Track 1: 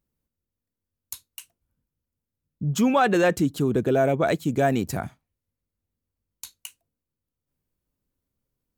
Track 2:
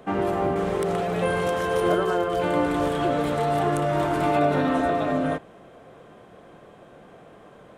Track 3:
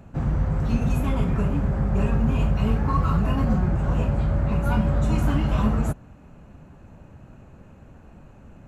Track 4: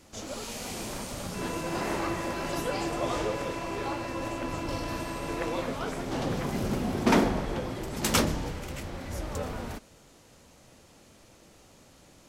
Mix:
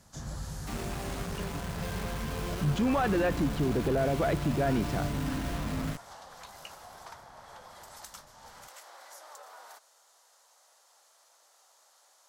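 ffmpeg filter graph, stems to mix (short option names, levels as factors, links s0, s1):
-filter_complex "[0:a]lowpass=3000,alimiter=limit=0.126:level=0:latency=1,volume=0.841[s0];[1:a]acrusher=bits=3:mix=0:aa=0.000001,asubboost=boost=6.5:cutoff=200,adelay=600,volume=0.15[s1];[2:a]equalizer=f=1700:t=o:w=0.29:g=10.5,volume=0.158[s2];[3:a]highpass=f=740:w=0.5412,highpass=f=740:w=1.3066,equalizer=f=2500:t=o:w=0.77:g=-11.5,acompressor=threshold=0.00631:ratio=10,volume=0.841[s3];[s0][s1][s2][s3]amix=inputs=4:normalize=0,asoftclip=type=tanh:threshold=0.119"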